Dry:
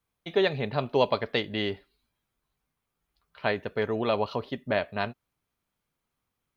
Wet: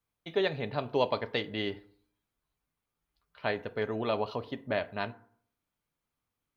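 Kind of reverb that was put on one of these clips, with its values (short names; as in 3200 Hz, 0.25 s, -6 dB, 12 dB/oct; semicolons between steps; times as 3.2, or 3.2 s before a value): FDN reverb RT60 0.59 s, low-frequency decay 1.05×, high-frequency decay 0.45×, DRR 12.5 dB; gain -4.5 dB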